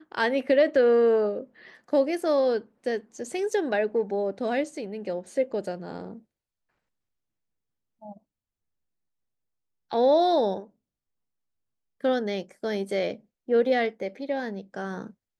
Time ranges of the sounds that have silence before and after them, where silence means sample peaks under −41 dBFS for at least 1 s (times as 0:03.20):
0:08.03–0:08.13
0:09.92–0:10.64